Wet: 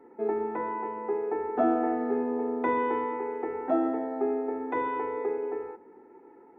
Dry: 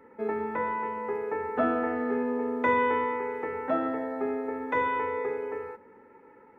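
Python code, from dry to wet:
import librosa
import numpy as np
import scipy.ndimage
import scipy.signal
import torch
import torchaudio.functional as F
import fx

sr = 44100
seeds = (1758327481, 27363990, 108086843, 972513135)

y = fx.small_body(x, sr, hz=(350.0, 720.0), ring_ms=30, db=18)
y = y * librosa.db_to_amplitude(-9.0)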